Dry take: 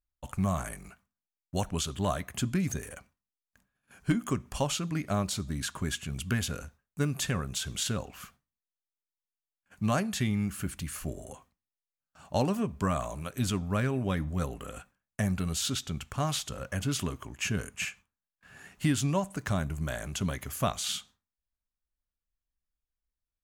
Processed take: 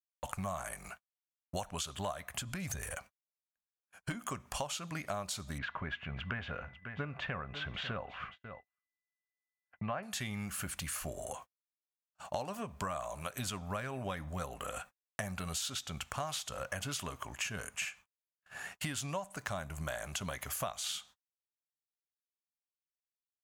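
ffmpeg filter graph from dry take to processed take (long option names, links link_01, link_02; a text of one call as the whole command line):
ffmpeg -i in.wav -filter_complex "[0:a]asettb=1/sr,asplit=3[link_01][link_02][link_03];[link_01]atrim=end=2.114[link_04];[link_02]atrim=start=2.11:end=2.95,asetpts=PTS-STARTPTS,afade=type=in:duration=0.004:curve=qsin,afade=type=out:start_time=0.836:duration=0.004:curve=qsin,bandreject=frequency=6500:width=26,asubboost=boost=10:cutoff=140,acompressor=threshold=-29dB:ratio=4:attack=3.2:release=140:knee=1:detection=peak[link_05];[link_03]atrim=start=2.946[link_06];[link_04][link_05]acrossfade=duration=0.004:curve1=hsin:curve2=qsin[link_07];[link_07][link_06]acrossfade=duration=0.004:curve1=qsin:curve2=hsin,asettb=1/sr,asplit=3[link_08][link_09][link_10];[link_08]atrim=end=5.584[link_11];[link_09]atrim=start=5.58:end=10.03,asetpts=PTS-STARTPTS,afade=type=in:duration=0.004:curve=qsin,afade=type=out:start_time=4.446:duration=0.004:curve=qsin,lowpass=frequency=2600:width=0.5412,lowpass=frequency=2600:width=1.3066,aeval=exprs='val(0)+0.000562*sin(2*PI*2000*n/s)':channel_layout=same,aecho=1:1:545:0.141,atrim=end_sample=196245[link_12];[link_10]atrim=start=10.026[link_13];[link_11][link_12]acrossfade=duration=0.004:curve1=hsin:curve2=qsin[link_14];[link_14][link_13]acrossfade=duration=0.004:curve1=qsin:curve2=hsin,agate=range=-38dB:threshold=-53dB:ratio=16:detection=peak,lowshelf=frequency=470:width_type=q:width=1.5:gain=-8.5,acompressor=threshold=-43dB:ratio=5,volume=6.5dB" out.wav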